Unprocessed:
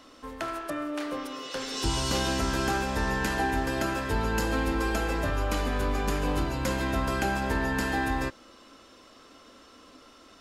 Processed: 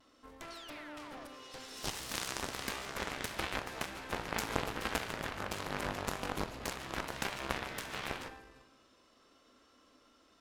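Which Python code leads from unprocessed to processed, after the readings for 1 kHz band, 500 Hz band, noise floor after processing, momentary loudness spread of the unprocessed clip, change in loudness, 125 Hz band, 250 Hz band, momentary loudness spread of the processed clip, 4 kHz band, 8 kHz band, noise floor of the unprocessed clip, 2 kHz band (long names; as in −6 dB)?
−10.0 dB, −11.5 dB, −66 dBFS, 7 LU, −10.5 dB, −15.0 dB, −14.5 dB, 11 LU, −6.5 dB, −6.5 dB, −54 dBFS, −9.0 dB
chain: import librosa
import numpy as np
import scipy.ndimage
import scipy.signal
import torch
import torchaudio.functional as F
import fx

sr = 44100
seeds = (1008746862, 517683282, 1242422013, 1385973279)

y = fx.vibrato(x, sr, rate_hz=0.44, depth_cents=18.0)
y = fx.rev_schroeder(y, sr, rt60_s=1.1, comb_ms=28, drr_db=8.5)
y = fx.spec_paint(y, sr, seeds[0], shape='fall', start_s=0.5, length_s=0.79, low_hz=540.0, high_hz=4700.0, level_db=-39.0)
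y = y + 10.0 ** (-19.0 / 20.0) * np.pad(y, (int(341 * sr / 1000.0), 0))[:len(y)]
y = fx.cheby_harmonics(y, sr, harmonics=(2, 3, 4, 8), levels_db=(-16, -8, -28, -31), full_scale_db=-14.0)
y = F.gain(torch.from_numpy(y), 1.0).numpy()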